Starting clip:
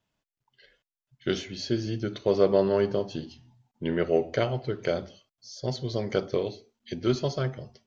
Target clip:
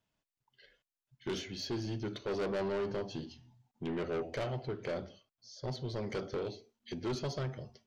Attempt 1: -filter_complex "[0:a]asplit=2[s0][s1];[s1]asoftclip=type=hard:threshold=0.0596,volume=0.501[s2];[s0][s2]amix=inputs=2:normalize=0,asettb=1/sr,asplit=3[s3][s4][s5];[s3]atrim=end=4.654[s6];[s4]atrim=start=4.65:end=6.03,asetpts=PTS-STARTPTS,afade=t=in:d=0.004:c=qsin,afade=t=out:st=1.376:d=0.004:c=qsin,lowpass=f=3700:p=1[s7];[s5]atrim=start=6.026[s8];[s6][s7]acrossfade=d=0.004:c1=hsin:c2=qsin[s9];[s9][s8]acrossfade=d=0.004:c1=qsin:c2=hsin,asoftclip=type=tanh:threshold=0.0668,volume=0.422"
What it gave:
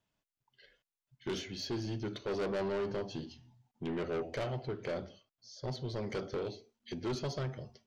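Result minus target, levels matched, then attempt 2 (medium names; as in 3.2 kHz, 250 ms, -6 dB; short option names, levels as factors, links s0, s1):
hard clipper: distortion +20 dB
-filter_complex "[0:a]asplit=2[s0][s1];[s1]asoftclip=type=hard:threshold=0.237,volume=0.501[s2];[s0][s2]amix=inputs=2:normalize=0,asettb=1/sr,asplit=3[s3][s4][s5];[s3]atrim=end=4.654[s6];[s4]atrim=start=4.65:end=6.03,asetpts=PTS-STARTPTS,afade=t=in:d=0.004:c=qsin,afade=t=out:st=1.376:d=0.004:c=qsin,lowpass=f=3700:p=1[s7];[s5]atrim=start=6.026[s8];[s6][s7]acrossfade=d=0.004:c1=hsin:c2=qsin[s9];[s9][s8]acrossfade=d=0.004:c1=qsin:c2=hsin,asoftclip=type=tanh:threshold=0.0668,volume=0.422"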